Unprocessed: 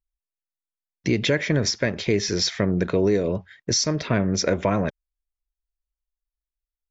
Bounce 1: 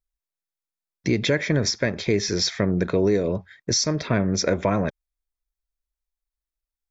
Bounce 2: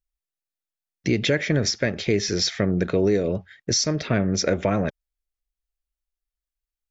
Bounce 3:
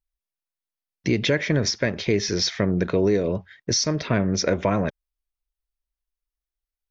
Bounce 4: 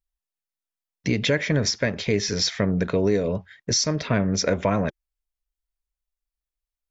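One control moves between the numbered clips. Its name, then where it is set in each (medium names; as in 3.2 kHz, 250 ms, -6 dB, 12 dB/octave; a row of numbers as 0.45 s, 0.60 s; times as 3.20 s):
band-stop, frequency: 2.9 kHz, 1 kHz, 7.3 kHz, 350 Hz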